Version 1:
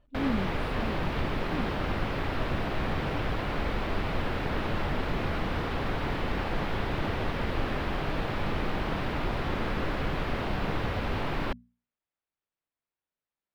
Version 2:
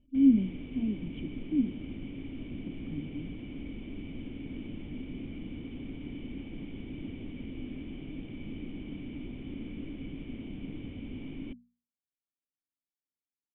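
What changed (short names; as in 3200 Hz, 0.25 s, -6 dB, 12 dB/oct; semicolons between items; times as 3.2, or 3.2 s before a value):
speech +10.5 dB; master: add vocal tract filter i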